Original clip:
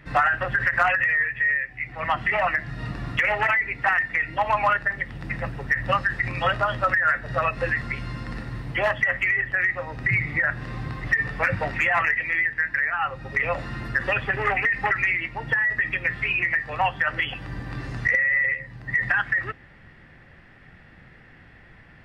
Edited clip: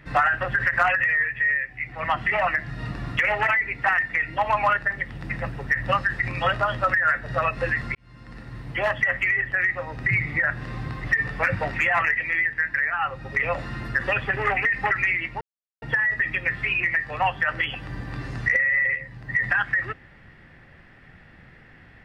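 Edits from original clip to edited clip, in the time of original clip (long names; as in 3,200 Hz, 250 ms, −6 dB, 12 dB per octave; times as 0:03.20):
0:07.95–0:08.98: fade in
0:15.41: splice in silence 0.41 s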